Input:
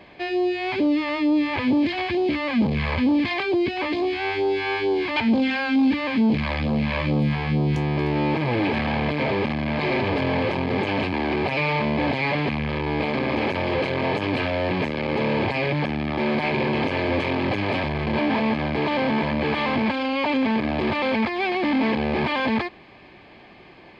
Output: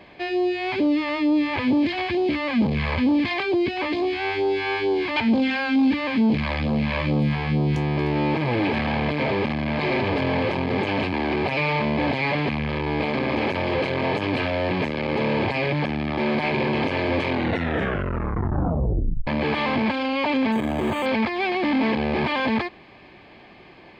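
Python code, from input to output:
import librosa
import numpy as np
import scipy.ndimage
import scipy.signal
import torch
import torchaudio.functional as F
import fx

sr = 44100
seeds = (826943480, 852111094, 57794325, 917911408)

y = fx.resample_linear(x, sr, factor=8, at=(20.52, 21.06))
y = fx.edit(y, sr, fx.tape_stop(start_s=17.28, length_s=1.99), tone=tone)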